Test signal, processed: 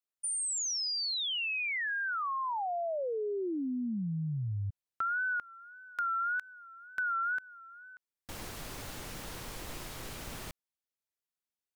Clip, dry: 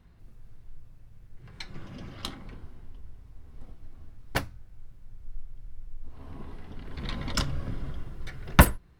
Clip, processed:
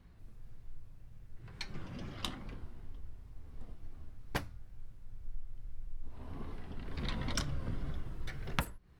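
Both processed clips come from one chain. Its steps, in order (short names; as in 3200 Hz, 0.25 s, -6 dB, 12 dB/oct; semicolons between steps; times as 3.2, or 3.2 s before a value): compressor 20:1, threshold -28 dBFS; wow and flutter 98 cents; gain -2 dB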